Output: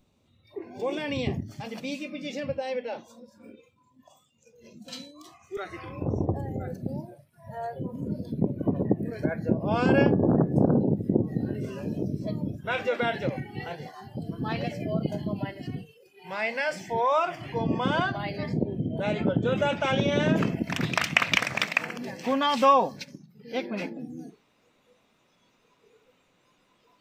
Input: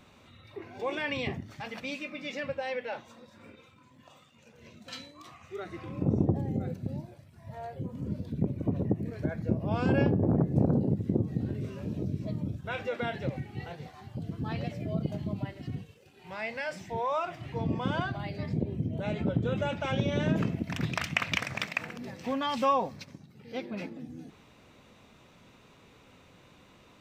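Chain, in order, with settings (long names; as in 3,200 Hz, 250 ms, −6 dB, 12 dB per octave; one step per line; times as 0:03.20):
noise reduction from a noise print of the clip's start 15 dB
parametric band 1,600 Hz −12 dB 2 octaves, from 0:05.57 190 Hz, from 0:06.73 68 Hz
level +7 dB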